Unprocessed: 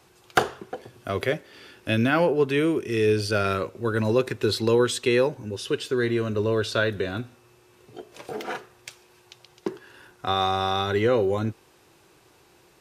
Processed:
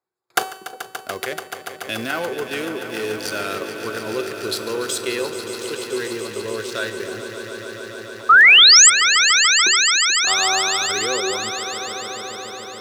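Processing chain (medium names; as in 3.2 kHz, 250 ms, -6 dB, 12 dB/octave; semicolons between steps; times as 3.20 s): local Wiener filter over 15 samples; RIAA curve recording; in parallel at +2 dB: level held to a coarse grid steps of 15 dB; on the sum: gate with hold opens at -41 dBFS; feedback comb 380 Hz, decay 0.79 s, mix 70%; painted sound rise, 8.29–8.90 s, 1.2–8.3 kHz -12 dBFS; on a send: echo with a slow build-up 144 ms, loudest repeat 5, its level -12 dB; on the sum: trim +3.5 dB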